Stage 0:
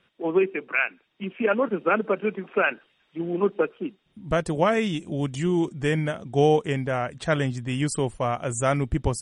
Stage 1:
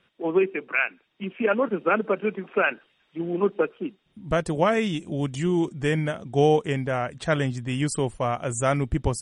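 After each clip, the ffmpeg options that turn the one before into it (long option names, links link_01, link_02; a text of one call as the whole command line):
ffmpeg -i in.wav -af anull out.wav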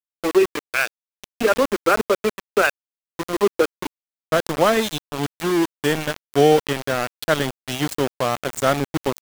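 ffmpeg -i in.wav -af "highpass=frequency=150:width=0.5412,highpass=frequency=150:width=1.3066,equalizer=frequency=180:width_type=q:width=4:gain=-10,equalizer=frequency=890:width_type=q:width=4:gain=-3,equalizer=frequency=2300:width_type=q:width=4:gain=-7,equalizer=frequency=4000:width_type=q:width=4:gain=10,lowpass=frequency=8800:width=0.5412,lowpass=frequency=8800:width=1.3066,aeval=exprs='val(0)*gte(abs(val(0)),0.0531)':channel_layout=same,volume=5.5dB" out.wav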